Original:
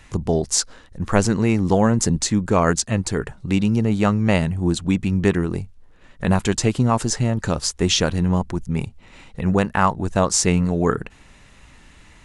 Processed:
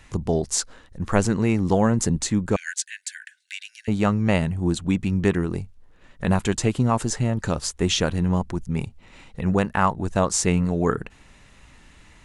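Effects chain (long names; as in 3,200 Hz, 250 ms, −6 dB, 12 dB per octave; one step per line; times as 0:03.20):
0:02.56–0:03.88: Chebyshev high-pass filter 1,500 Hz, order 10
dynamic equaliser 5,100 Hz, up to −4 dB, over −40 dBFS, Q 2
level −2.5 dB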